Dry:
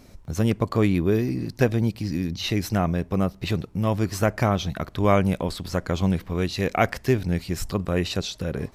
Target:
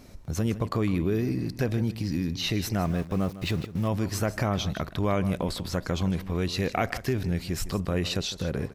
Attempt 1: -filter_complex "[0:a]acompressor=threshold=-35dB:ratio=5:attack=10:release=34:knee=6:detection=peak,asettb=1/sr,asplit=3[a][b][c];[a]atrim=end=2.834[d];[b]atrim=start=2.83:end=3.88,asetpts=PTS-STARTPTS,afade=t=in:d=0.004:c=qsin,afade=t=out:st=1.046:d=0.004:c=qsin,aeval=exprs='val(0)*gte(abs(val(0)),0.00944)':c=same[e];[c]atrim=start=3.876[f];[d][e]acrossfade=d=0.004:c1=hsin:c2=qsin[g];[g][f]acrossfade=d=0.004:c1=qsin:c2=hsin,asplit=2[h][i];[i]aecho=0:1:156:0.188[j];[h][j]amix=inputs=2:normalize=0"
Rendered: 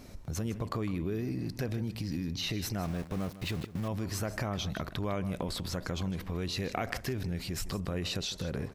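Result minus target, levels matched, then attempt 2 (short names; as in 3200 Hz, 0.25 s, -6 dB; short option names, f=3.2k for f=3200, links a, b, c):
compressor: peak gain reduction +8 dB
-filter_complex "[0:a]acompressor=threshold=-25dB:ratio=5:attack=10:release=34:knee=6:detection=peak,asettb=1/sr,asplit=3[a][b][c];[a]atrim=end=2.834[d];[b]atrim=start=2.83:end=3.88,asetpts=PTS-STARTPTS,afade=t=in:d=0.004:c=qsin,afade=t=out:st=1.046:d=0.004:c=qsin,aeval=exprs='val(0)*gte(abs(val(0)),0.00944)':c=same[e];[c]atrim=start=3.876[f];[d][e]acrossfade=d=0.004:c1=hsin:c2=qsin[g];[g][f]acrossfade=d=0.004:c1=qsin:c2=hsin,asplit=2[h][i];[i]aecho=0:1:156:0.188[j];[h][j]amix=inputs=2:normalize=0"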